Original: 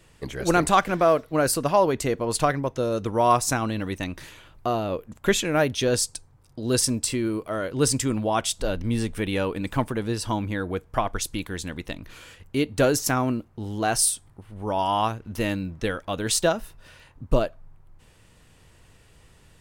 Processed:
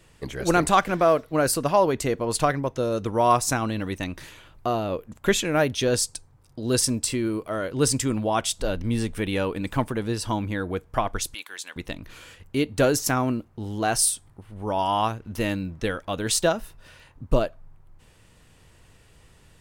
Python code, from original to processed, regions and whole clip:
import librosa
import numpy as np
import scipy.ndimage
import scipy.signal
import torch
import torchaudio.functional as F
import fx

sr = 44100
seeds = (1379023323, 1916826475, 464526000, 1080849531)

y = fx.chain(x, sr, fx.highpass(hz=1000.0, slope=12),
    fx.notch(hz=1900.0, q=22.0), at=(11.34, 11.76))